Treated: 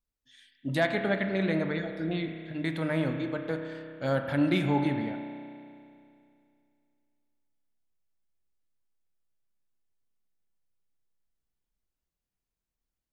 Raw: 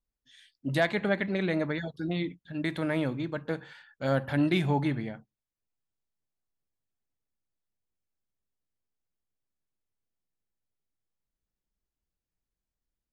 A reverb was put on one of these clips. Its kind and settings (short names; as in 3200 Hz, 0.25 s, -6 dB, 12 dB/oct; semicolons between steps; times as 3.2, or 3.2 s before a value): spring tank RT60 2.5 s, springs 31 ms, chirp 75 ms, DRR 5.5 dB; gain -1 dB